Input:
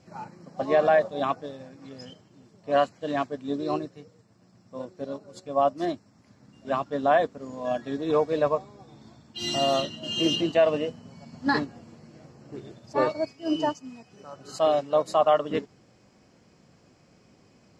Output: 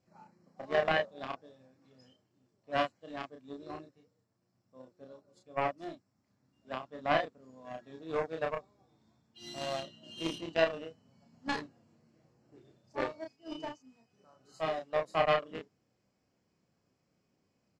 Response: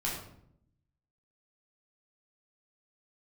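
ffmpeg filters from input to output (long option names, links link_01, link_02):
-filter_complex "[0:a]aeval=exprs='0.355*(cos(1*acos(clip(val(0)/0.355,-1,1)))-cos(1*PI/2))+0.1*(cos(3*acos(clip(val(0)/0.355,-1,1)))-cos(3*PI/2))':channel_layout=same,asplit=2[link_01][link_02];[link_02]adelay=31,volume=-4dB[link_03];[link_01][link_03]amix=inputs=2:normalize=0,volume=-3.5dB"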